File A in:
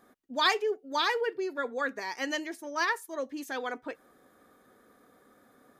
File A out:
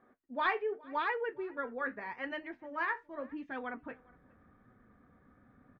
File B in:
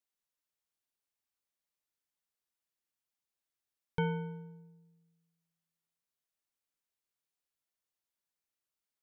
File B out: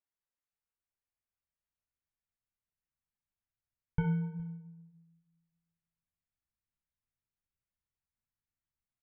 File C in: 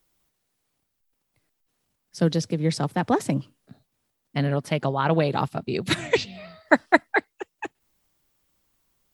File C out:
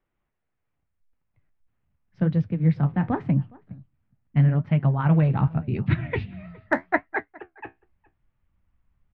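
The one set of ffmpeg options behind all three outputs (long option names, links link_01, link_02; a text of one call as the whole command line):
ffmpeg -i in.wav -filter_complex "[0:a]lowpass=frequency=2400:width=0.5412,lowpass=frequency=2400:width=1.3066,asubboost=boost=10:cutoff=140,flanger=delay=7.9:depth=8.2:regen=-55:speed=0.84:shape=sinusoidal,asplit=2[link_01][link_02];[link_02]adelay=414,volume=-24dB,highshelf=frequency=4000:gain=-9.32[link_03];[link_01][link_03]amix=inputs=2:normalize=0" out.wav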